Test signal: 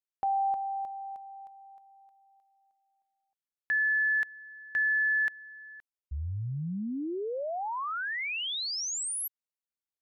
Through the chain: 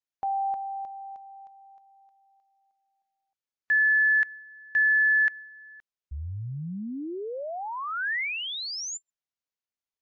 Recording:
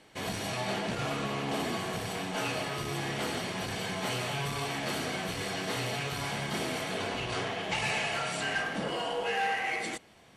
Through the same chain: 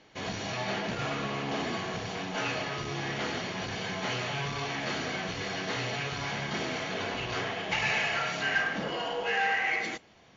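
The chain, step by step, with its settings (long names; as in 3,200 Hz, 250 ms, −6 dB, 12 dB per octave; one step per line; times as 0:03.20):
dynamic equaliser 1,800 Hz, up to +6 dB, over −40 dBFS, Q 1.4
MP3 64 kbit/s 16,000 Hz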